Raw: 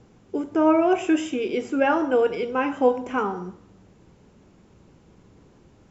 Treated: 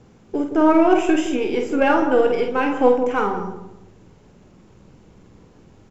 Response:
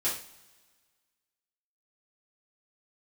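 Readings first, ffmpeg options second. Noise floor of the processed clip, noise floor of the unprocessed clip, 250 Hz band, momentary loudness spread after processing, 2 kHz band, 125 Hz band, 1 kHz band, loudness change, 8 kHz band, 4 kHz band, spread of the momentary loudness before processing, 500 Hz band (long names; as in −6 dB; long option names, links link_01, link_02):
−51 dBFS, −55 dBFS, +4.0 dB, 10 LU, +4.0 dB, +5.0 dB, +4.5 dB, +4.0 dB, can't be measured, +4.0 dB, 11 LU, +4.0 dB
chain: -filter_complex "[0:a]aeval=exprs='if(lt(val(0),0),0.708*val(0),val(0))':channel_layout=same,asplit=2[link_01][link_02];[link_02]adelay=49,volume=-6dB[link_03];[link_01][link_03]amix=inputs=2:normalize=0,asplit=2[link_04][link_05];[link_05]adelay=168,lowpass=frequency=810:poles=1,volume=-7.5dB,asplit=2[link_06][link_07];[link_07]adelay=168,lowpass=frequency=810:poles=1,volume=0.37,asplit=2[link_08][link_09];[link_09]adelay=168,lowpass=frequency=810:poles=1,volume=0.37,asplit=2[link_10][link_11];[link_11]adelay=168,lowpass=frequency=810:poles=1,volume=0.37[link_12];[link_04][link_06][link_08][link_10][link_12]amix=inputs=5:normalize=0,volume=4dB"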